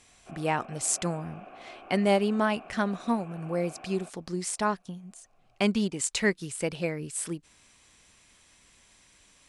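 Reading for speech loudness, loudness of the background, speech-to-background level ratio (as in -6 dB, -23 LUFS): -29.5 LUFS, -48.5 LUFS, 19.0 dB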